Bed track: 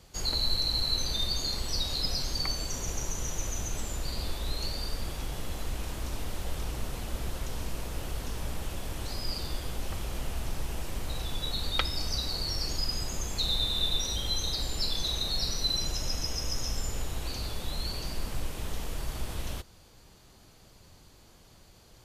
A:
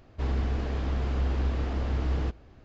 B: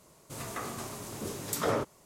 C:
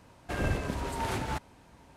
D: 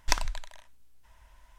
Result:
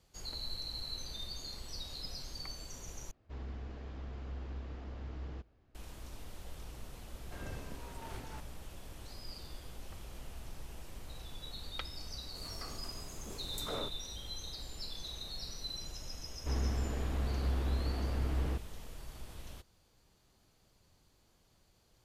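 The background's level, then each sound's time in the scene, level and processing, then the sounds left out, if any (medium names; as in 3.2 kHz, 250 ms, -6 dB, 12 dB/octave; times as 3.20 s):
bed track -13 dB
3.11 s: replace with A -15.5 dB
7.02 s: add C -15.5 dB
12.05 s: add B -11.5 dB + band-stop 1.8 kHz
16.27 s: add A -6 dB
not used: D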